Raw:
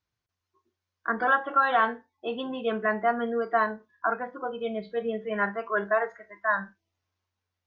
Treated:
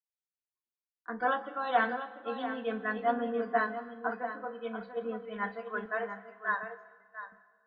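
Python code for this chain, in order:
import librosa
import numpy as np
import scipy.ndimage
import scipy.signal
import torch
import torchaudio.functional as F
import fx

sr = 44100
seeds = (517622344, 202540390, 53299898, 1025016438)

y = fx.steep_highpass(x, sr, hz=390.0, slope=48, at=(5.85, 6.63))
y = y + 0.67 * np.pad(y, (int(4.0 * sr / 1000.0), 0))[:len(y)]
y = y + 10.0 ** (-7.0 / 20.0) * np.pad(y, (int(691 * sr / 1000.0), 0))[:len(y)]
y = fx.rev_freeverb(y, sr, rt60_s=3.5, hf_ratio=0.75, predelay_ms=115, drr_db=12.5)
y = fx.band_widen(y, sr, depth_pct=70)
y = F.gain(torch.from_numpy(y), -8.5).numpy()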